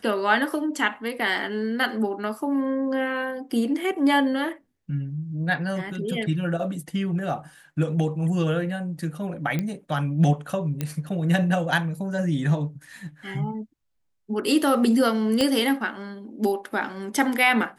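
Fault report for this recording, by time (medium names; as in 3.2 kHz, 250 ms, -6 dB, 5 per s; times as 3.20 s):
9.59 s: pop -14 dBFS
10.81 s: pop -13 dBFS
15.41 s: pop -10 dBFS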